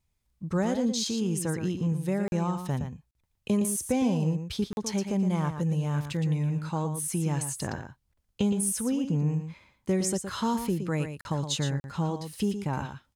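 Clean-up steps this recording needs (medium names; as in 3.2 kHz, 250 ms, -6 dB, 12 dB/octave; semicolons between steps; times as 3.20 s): interpolate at 2.28/3.11/4.73/11.21/11.80 s, 41 ms; inverse comb 116 ms -8.5 dB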